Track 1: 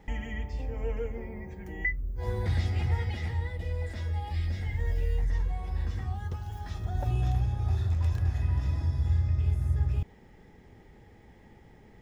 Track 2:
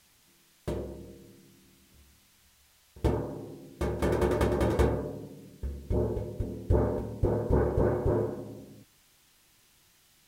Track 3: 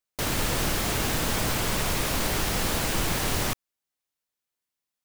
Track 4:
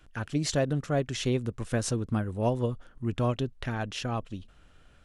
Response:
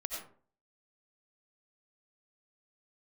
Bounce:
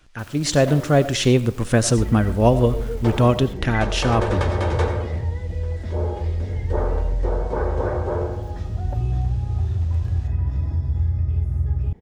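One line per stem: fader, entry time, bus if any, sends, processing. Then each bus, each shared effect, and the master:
-4.5 dB, 1.90 s, no send, tilt shelf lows +6 dB, about 1.1 kHz; compression 1.5:1, threshold -34 dBFS, peak gain reduction 7 dB
-6.0 dB, 0.00 s, send -3 dB, low-pass 12 kHz 24 dB/octave; three-band isolator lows -15 dB, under 460 Hz, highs -24 dB, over 7.7 kHz
-12.5 dB, 0.00 s, no send, overload inside the chain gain 32.5 dB; auto duck -12 dB, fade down 1.75 s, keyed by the fourth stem
+0.5 dB, 0.00 s, send -11 dB, none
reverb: on, RT60 0.45 s, pre-delay 50 ms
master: level rider gain up to 9.5 dB

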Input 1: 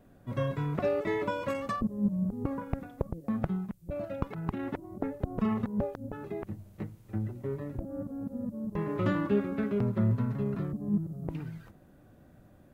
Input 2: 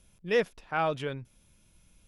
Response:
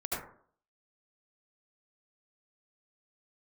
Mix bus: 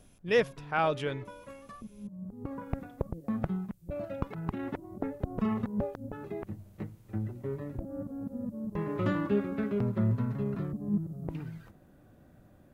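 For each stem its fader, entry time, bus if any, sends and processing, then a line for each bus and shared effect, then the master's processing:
-1.0 dB, 0.00 s, no send, auto duck -14 dB, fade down 0.20 s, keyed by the second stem
+0.5 dB, 0.00 s, no send, none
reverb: none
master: none

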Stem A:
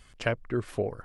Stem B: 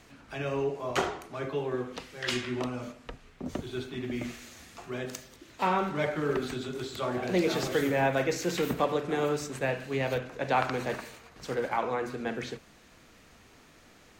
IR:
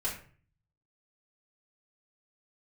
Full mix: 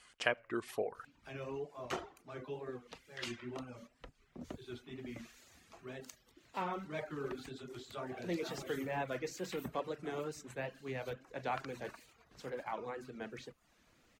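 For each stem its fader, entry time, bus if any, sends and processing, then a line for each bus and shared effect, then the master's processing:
-2.0 dB, 0.00 s, send -15.5 dB, echo send -22 dB, high-pass 750 Hz 6 dB/octave
-11.0 dB, 0.95 s, no send, no echo send, none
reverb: on, RT60 0.45 s, pre-delay 3 ms
echo: feedback delay 84 ms, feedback 36%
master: reverb removal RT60 0.52 s; wow and flutter 73 cents

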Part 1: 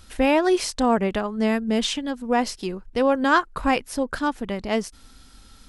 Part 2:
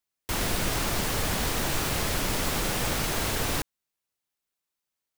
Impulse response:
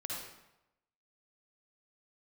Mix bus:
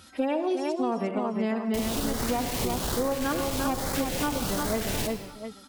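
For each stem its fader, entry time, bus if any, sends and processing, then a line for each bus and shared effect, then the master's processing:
+1.0 dB, 0.00 s, send -7.5 dB, echo send -4.5 dB, harmonic-percussive separation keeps harmonic; high-pass 98 Hz 24 dB/octave
+2.5 dB, 1.45 s, send -5 dB, no echo send, LFO notch saw up 1.2 Hz 950–3100 Hz; one-sided clip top -28.5 dBFS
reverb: on, RT60 0.90 s, pre-delay 48 ms
echo: feedback delay 350 ms, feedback 26%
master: compression 6:1, threshold -25 dBFS, peak gain reduction 13.5 dB

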